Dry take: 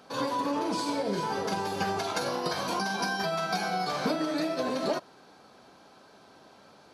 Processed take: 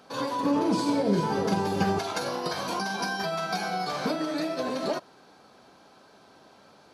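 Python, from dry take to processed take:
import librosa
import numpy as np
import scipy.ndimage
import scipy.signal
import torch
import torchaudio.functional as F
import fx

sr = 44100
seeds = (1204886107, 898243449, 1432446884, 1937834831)

y = fx.peak_eq(x, sr, hz=160.0, db=9.5, octaves=2.9, at=(0.43, 1.99))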